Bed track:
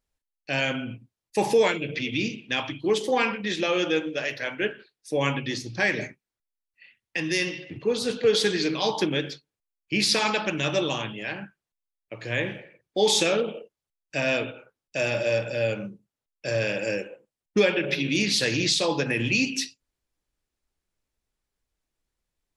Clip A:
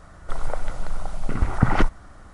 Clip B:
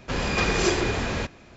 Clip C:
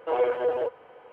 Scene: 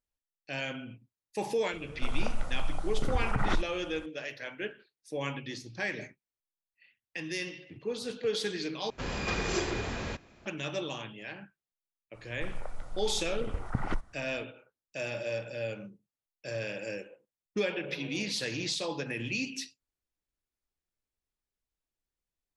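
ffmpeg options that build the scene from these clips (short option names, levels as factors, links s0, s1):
-filter_complex "[1:a]asplit=2[s0][s1];[0:a]volume=0.316[s2];[s0]alimiter=level_in=3.76:limit=0.891:release=50:level=0:latency=1[s3];[3:a]acompressor=threshold=0.0126:ratio=6:attack=3.2:release=140:knee=1:detection=peak[s4];[s2]asplit=2[s5][s6];[s5]atrim=end=8.904[s7];[2:a]atrim=end=1.56,asetpts=PTS-STARTPTS,volume=0.376[s8];[s6]atrim=start=10.456[s9];[s3]atrim=end=2.33,asetpts=PTS-STARTPTS,volume=0.141,afade=t=in:d=0.004:c=hsin,afade=t=out:st=2.326:d=0.004:c=hsin,adelay=1730[s10];[s1]atrim=end=2.33,asetpts=PTS-STARTPTS,volume=0.211,afade=t=in:d=0.05,afade=t=out:st=2.28:d=0.05,adelay=12120[s11];[s4]atrim=end=1.12,asetpts=PTS-STARTPTS,volume=0.282,afade=t=in:d=0.004:c=hsin,afade=t=out:st=1.116:d=0.004:c=hsin,adelay=17630[s12];[s7][s8]acrossfade=d=0.004:c1=hsin:c2=hsin[s13];[s13][s9]acrossfade=d=0.004:c1=hsin:c2=hsin[s14];[s14][s10][s11][s12]amix=inputs=4:normalize=0"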